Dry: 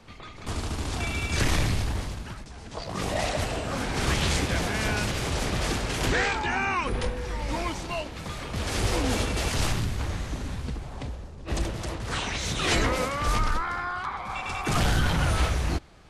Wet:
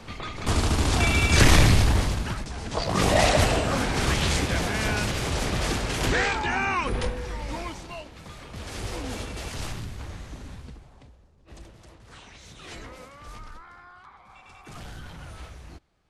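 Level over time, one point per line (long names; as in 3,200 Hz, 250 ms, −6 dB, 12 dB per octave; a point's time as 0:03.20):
0:03.47 +8 dB
0:04.12 +1 dB
0:07.03 +1 dB
0:08.02 −7.5 dB
0:10.55 −7.5 dB
0:11.12 −17.5 dB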